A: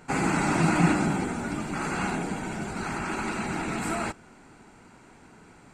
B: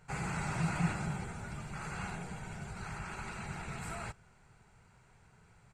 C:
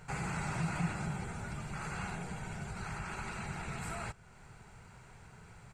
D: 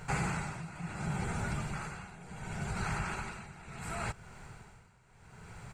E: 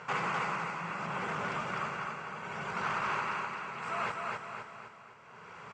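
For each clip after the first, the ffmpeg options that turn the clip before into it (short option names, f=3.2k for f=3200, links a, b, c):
-af "firequalizer=gain_entry='entry(130,0);entry(280,-24);entry(410,-11);entry(1500,-8)':delay=0.05:min_phase=1,volume=-3dB"
-af "acompressor=threshold=-59dB:ratio=1.5,volume=8.5dB"
-af "tremolo=f=0.7:d=0.85,volume=6.5dB"
-af "aecho=1:1:255|510|765|1020|1275|1530:0.668|0.321|0.154|0.0739|0.0355|0.017,volume=30dB,asoftclip=hard,volume=-30dB,highpass=290,equalizer=f=320:t=q:w=4:g=-4,equalizer=f=530:t=q:w=4:g=4,equalizer=f=770:t=q:w=4:g=-4,equalizer=f=1.1k:t=q:w=4:g=10,equalizer=f=2.9k:t=q:w=4:g=3,equalizer=f=4.1k:t=q:w=4:g=-8,lowpass=f=5.4k:w=0.5412,lowpass=f=5.4k:w=1.3066,volume=3dB"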